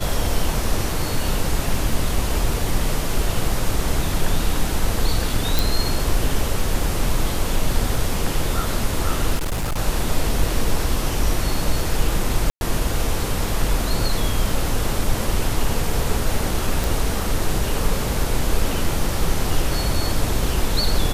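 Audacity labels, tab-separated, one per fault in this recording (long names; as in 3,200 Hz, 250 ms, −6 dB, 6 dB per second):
1.930000	1.930000	drop-out 2 ms
5.590000	5.590000	click
9.350000	9.790000	clipping −19.5 dBFS
12.500000	12.610000	drop-out 111 ms
16.840000	16.840000	click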